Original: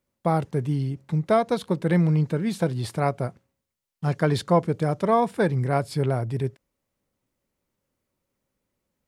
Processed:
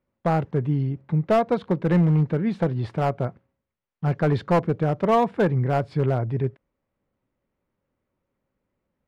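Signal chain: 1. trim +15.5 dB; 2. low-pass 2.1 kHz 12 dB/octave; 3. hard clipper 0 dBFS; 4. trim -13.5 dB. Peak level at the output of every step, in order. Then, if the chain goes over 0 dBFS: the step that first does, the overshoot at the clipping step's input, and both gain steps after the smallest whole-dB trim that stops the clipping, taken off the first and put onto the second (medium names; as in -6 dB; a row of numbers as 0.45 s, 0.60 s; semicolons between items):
+9.0 dBFS, +8.5 dBFS, 0.0 dBFS, -13.5 dBFS; step 1, 8.5 dB; step 1 +6.5 dB, step 4 -4.5 dB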